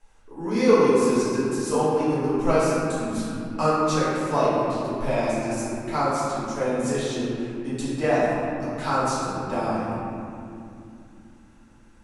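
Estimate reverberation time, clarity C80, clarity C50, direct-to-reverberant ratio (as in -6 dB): 2.7 s, -1.5 dB, -3.5 dB, -12.5 dB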